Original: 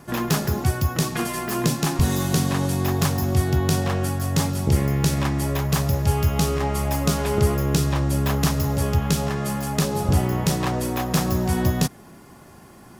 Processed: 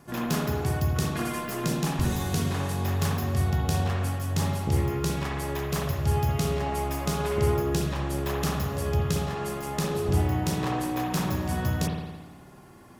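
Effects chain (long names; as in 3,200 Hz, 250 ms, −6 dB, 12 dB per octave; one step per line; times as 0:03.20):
spring reverb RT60 1.2 s, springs 55 ms, chirp 30 ms, DRR −0.5 dB
level −7.5 dB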